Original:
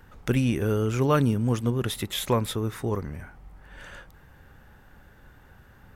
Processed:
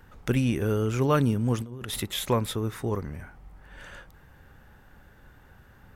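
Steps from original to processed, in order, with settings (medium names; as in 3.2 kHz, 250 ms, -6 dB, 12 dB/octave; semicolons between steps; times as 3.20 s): 1.56–2.00 s: compressor with a negative ratio -35 dBFS, ratio -1; trim -1 dB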